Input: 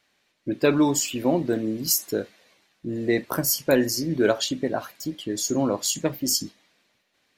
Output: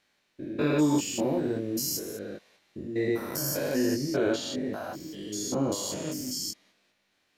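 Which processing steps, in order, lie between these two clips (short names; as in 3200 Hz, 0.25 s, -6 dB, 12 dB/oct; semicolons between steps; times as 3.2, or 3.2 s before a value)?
stepped spectrum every 0.2 s; chorus 1.3 Hz, delay 19.5 ms, depth 2.3 ms; gain +1.5 dB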